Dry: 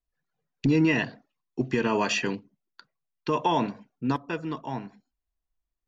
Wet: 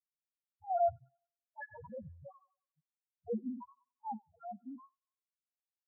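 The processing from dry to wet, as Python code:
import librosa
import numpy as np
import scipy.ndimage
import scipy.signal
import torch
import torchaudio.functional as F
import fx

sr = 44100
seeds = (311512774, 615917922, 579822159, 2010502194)

p1 = fx.octave_mirror(x, sr, pivot_hz=470.0)
p2 = fx.over_compress(p1, sr, threshold_db=-31.0, ratio=-1.0, at=(1.61, 2.26))
p3 = np.sign(p2) * np.maximum(np.abs(p2) - 10.0 ** (-44.5 / 20.0), 0.0)
p4 = fx.spec_topn(p3, sr, count=1)
p5 = p4 + fx.echo_wet_highpass(p4, sr, ms=94, feedback_pct=33, hz=3500.0, wet_db=-4, dry=0)
p6 = fx.flanger_cancel(p5, sr, hz=1.5, depth_ms=1.2)
y = p6 * 10.0 ** (1.0 / 20.0)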